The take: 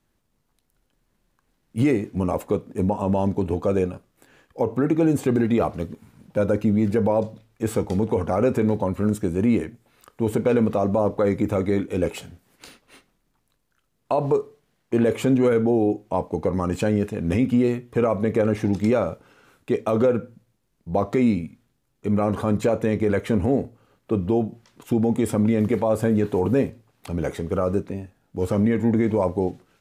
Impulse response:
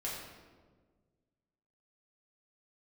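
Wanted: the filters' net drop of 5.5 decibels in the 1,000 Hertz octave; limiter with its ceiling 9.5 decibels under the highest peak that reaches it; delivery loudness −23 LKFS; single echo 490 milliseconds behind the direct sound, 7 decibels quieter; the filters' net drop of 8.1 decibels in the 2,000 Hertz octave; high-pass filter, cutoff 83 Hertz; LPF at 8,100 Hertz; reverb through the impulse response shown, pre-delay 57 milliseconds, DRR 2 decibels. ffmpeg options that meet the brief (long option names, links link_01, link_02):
-filter_complex "[0:a]highpass=83,lowpass=8100,equalizer=frequency=1000:width_type=o:gain=-6,equalizer=frequency=2000:width_type=o:gain=-8.5,alimiter=limit=-20dB:level=0:latency=1,aecho=1:1:490:0.447,asplit=2[link_01][link_02];[1:a]atrim=start_sample=2205,adelay=57[link_03];[link_02][link_03]afir=irnorm=-1:irlink=0,volume=-4dB[link_04];[link_01][link_04]amix=inputs=2:normalize=0,volume=4.5dB"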